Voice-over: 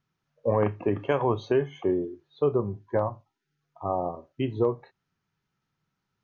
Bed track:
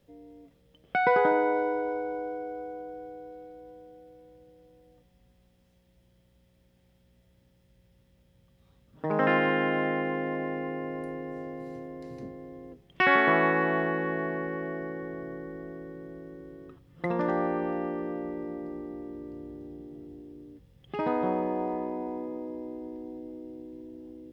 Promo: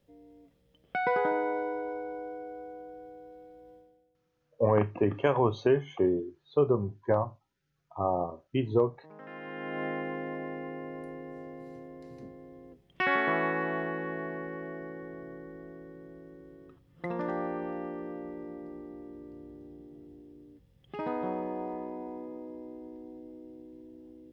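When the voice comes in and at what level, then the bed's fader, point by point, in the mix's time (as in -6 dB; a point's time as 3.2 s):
4.15 s, -0.5 dB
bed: 3.75 s -5 dB
4.17 s -23.5 dB
9.25 s -23.5 dB
9.84 s -5.5 dB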